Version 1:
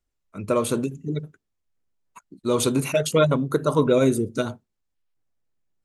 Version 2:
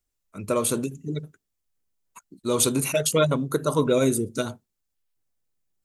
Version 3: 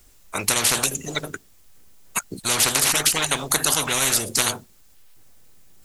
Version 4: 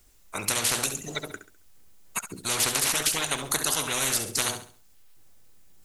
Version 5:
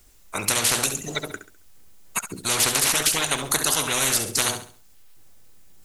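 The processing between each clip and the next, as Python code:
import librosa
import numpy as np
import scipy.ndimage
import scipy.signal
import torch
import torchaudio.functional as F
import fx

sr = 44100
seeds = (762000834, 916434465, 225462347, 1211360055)

y1 = fx.high_shelf(x, sr, hz=5300.0, db=11.5)
y1 = F.gain(torch.from_numpy(y1), -2.5).numpy()
y2 = fx.spectral_comp(y1, sr, ratio=10.0)
y2 = F.gain(torch.from_numpy(y2), 6.0).numpy()
y3 = fx.echo_feedback(y2, sr, ms=68, feedback_pct=34, wet_db=-10.5)
y3 = F.gain(torch.from_numpy(y3), -6.0).numpy()
y4 = 10.0 ** (-9.0 / 20.0) * np.tanh(y3 / 10.0 ** (-9.0 / 20.0))
y4 = F.gain(torch.from_numpy(y4), 4.5).numpy()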